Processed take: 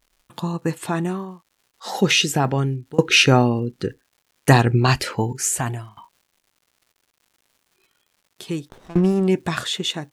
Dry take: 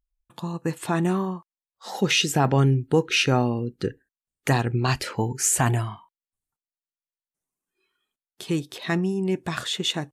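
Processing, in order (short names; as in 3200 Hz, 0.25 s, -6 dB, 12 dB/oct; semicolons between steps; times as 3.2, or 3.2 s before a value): tremolo saw down 0.67 Hz, depth 95%; crackle 240/s -57 dBFS; 8.69–9.28 running maximum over 17 samples; gain +8.5 dB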